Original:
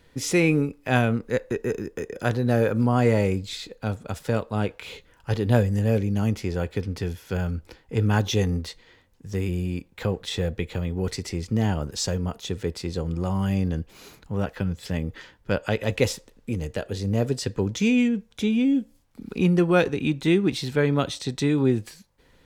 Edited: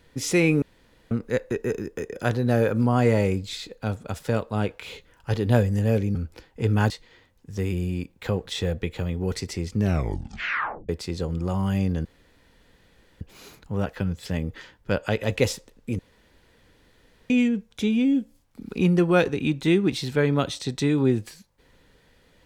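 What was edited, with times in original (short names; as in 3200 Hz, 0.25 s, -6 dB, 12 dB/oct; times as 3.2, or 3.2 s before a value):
0.62–1.11 room tone
6.15–7.48 cut
8.23–8.66 cut
11.49 tape stop 1.16 s
13.81 insert room tone 1.16 s
16.59–17.9 room tone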